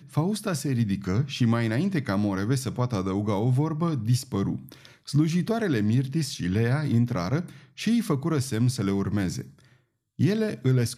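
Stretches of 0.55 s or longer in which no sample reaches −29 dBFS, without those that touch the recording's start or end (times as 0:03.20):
0:09.41–0:10.19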